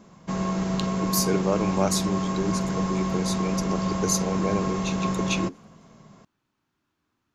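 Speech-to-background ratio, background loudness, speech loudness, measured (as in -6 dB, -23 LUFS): -2.5 dB, -27.0 LUFS, -29.5 LUFS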